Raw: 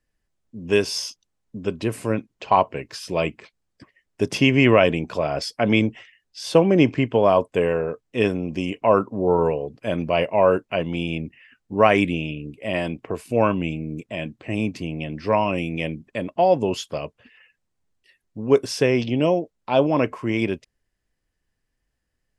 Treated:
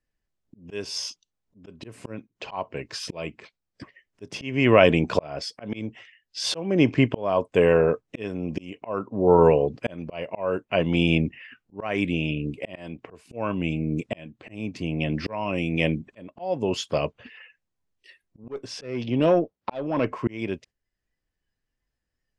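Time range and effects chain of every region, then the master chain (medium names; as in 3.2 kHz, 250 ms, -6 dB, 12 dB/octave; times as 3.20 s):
18.44–20.28 s: high-pass 53 Hz 24 dB/octave + treble shelf 7.9 kHz -11 dB + valve stage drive 11 dB, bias 0.2
whole clip: spectral noise reduction 12 dB; slow attack 779 ms; low-pass 7.7 kHz 12 dB/octave; trim +6.5 dB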